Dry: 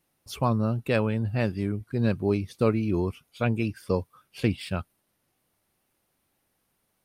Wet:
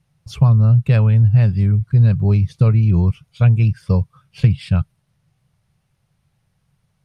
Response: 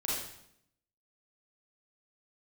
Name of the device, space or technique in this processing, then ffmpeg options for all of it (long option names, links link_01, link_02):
jukebox: -af "lowpass=7800,lowshelf=frequency=200:width_type=q:width=3:gain=11.5,acompressor=threshold=-12dB:ratio=4,volume=3dB"